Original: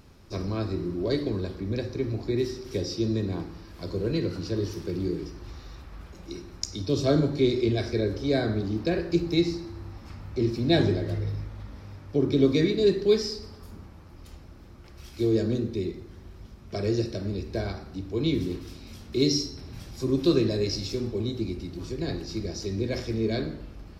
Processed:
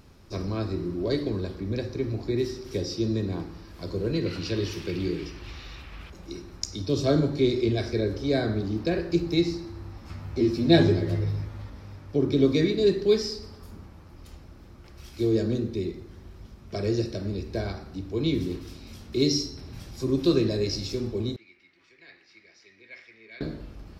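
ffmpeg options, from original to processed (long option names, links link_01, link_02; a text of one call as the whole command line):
ffmpeg -i in.wav -filter_complex "[0:a]asettb=1/sr,asplit=3[link_01][link_02][link_03];[link_01]atrim=end=4.264[link_04];[link_02]atrim=start=4.26:end=6.1,asetpts=PTS-STARTPTS,afade=type=in:duration=0.004:curve=qsin,afade=type=out:start_time=1.836:duration=0.004:curve=qsin,equalizer=frequency=2700:width=1.1:gain=13[link_05];[link_03]atrim=start=6.096[link_06];[link_04][link_05]acrossfade=duration=0.004:curve1=hsin:curve2=qsin[link_07];[link_07][link_06]acrossfade=duration=0.004:curve1=qsin:curve2=hsin,asettb=1/sr,asplit=3[link_08][link_09][link_10];[link_08]atrim=end=10.084[link_11];[link_09]atrim=start=10.08:end=11.7,asetpts=PTS-STARTPTS,afade=type=in:duration=0.004:curve=qsin,afade=type=out:start_time=1.616:duration=0.004:curve=qsin,asplit=2[link_12][link_13];[link_13]adelay=12,volume=-2dB[link_14];[link_12][link_14]amix=inputs=2:normalize=0,atrim=end_sample=71442[link_15];[link_10]atrim=start=11.696[link_16];[link_11][link_15]acrossfade=duration=0.004:curve1=hsin:curve2=qsin[link_17];[link_17][link_16]acrossfade=duration=0.004:curve1=qsin:curve2=hsin,asettb=1/sr,asplit=3[link_18][link_19][link_20];[link_18]atrim=end=21.364[link_21];[link_19]atrim=start=21.36:end=23.41,asetpts=PTS-STARTPTS,afade=type=in:duration=0.004:curve=qsin,afade=type=out:start_time=2.046:duration=0.004:curve=qsin,bandpass=frequency=2100:width_type=q:width=4.6[link_22];[link_20]atrim=start=23.406[link_23];[link_21][link_22]acrossfade=duration=0.004:curve1=hsin:curve2=qsin[link_24];[link_24][link_23]acrossfade=duration=0.004:curve1=qsin:curve2=hsin" out.wav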